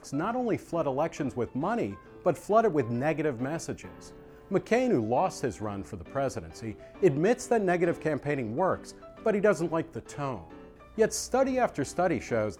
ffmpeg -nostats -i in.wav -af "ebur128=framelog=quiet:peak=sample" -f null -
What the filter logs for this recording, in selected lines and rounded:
Integrated loudness:
  I:         -29.0 LUFS
  Threshold: -39.4 LUFS
Loudness range:
  LRA:         2.6 LU
  Threshold: -49.4 LUFS
  LRA low:   -30.8 LUFS
  LRA high:  -28.2 LUFS
Sample peak:
  Peak:      -10.4 dBFS